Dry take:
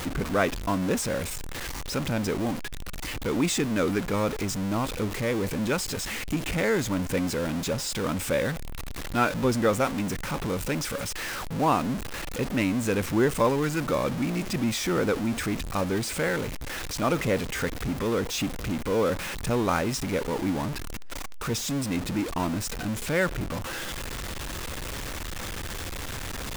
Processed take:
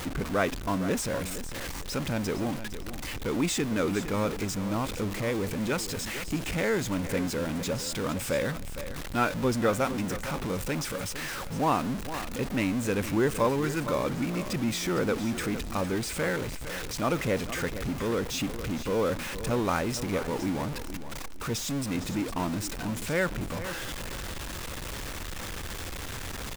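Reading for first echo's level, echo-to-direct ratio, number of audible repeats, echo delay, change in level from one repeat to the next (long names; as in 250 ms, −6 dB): −12.0 dB, −11.5 dB, 2, 459 ms, −12.5 dB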